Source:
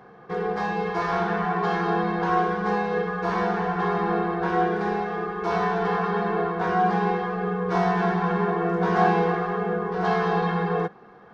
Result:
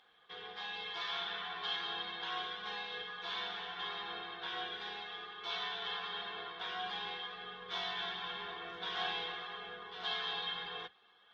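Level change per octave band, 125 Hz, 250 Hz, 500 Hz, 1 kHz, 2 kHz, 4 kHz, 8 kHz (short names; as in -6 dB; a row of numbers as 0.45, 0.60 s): -33.5 dB, -31.5 dB, -25.0 dB, -19.5 dB, -11.5 dB, +6.5 dB, n/a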